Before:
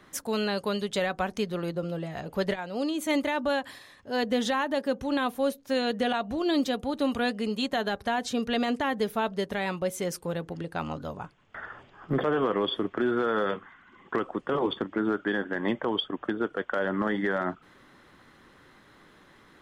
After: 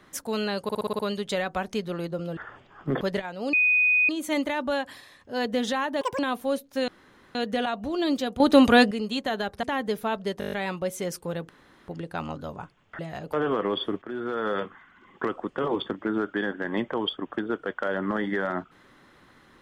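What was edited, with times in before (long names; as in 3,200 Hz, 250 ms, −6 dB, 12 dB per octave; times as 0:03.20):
0:00.63: stutter 0.06 s, 7 plays
0:02.01–0:02.35: swap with 0:11.60–0:12.24
0:02.87: insert tone 2,490 Hz −17.5 dBFS 0.56 s
0:04.79–0:05.13: play speed 189%
0:05.82: splice in room tone 0.47 s
0:06.87–0:07.38: clip gain +11 dB
0:08.10–0:08.75: remove
0:09.52: stutter 0.02 s, 7 plays
0:10.49: splice in room tone 0.39 s
0:12.93–0:13.47: fade in, from −12 dB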